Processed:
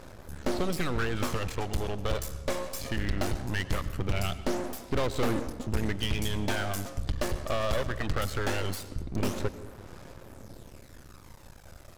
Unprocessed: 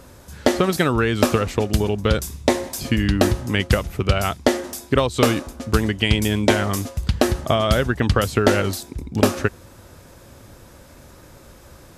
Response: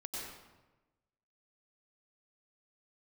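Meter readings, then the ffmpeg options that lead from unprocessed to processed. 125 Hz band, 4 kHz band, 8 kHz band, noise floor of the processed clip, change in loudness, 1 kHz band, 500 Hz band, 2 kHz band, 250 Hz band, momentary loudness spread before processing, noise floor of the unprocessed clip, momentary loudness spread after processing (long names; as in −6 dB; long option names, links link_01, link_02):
−10.5 dB, −11.0 dB, −10.5 dB, −50 dBFS, −11.5 dB, −11.0 dB, −12.5 dB, −10.5 dB, −13.0 dB, 6 LU, −46 dBFS, 18 LU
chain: -filter_complex "[0:a]aphaser=in_gain=1:out_gain=1:delay=1.8:decay=0.49:speed=0.2:type=sinusoidal,aeval=exprs='(tanh(3.55*val(0)+0.75)-tanh(0.75))/3.55':channel_layout=same,aeval=exprs='max(val(0),0)':channel_layout=same,asplit=2[link_01][link_02];[1:a]atrim=start_sample=2205,lowpass=7700[link_03];[link_02][link_03]afir=irnorm=-1:irlink=0,volume=-11dB[link_04];[link_01][link_04]amix=inputs=2:normalize=0"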